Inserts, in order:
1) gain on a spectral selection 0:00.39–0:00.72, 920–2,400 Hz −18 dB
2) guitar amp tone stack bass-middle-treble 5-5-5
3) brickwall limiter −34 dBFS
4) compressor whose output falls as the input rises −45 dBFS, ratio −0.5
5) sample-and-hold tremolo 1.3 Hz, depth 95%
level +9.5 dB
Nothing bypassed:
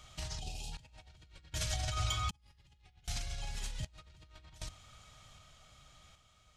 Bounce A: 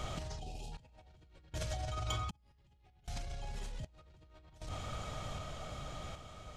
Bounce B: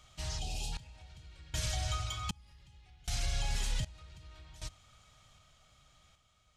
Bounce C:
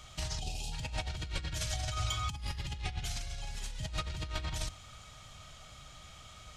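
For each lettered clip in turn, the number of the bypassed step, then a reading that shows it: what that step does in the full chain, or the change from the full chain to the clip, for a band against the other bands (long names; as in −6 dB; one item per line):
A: 2, 500 Hz band +8.0 dB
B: 4, change in crest factor −5.5 dB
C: 5, change in momentary loudness spread −8 LU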